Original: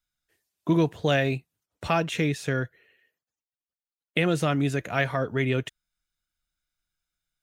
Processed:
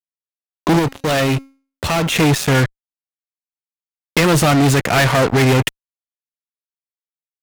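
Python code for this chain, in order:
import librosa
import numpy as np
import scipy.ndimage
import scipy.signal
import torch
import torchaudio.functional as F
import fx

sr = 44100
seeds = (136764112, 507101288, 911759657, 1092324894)

y = fx.fuzz(x, sr, gain_db=36.0, gate_db=-39.0)
y = fx.comb_fb(y, sr, f0_hz=270.0, decay_s=0.4, harmonics='all', damping=0.0, mix_pct=40, at=(0.79, 2.16))
y = y * librosa.db_to_amplitude(2.5)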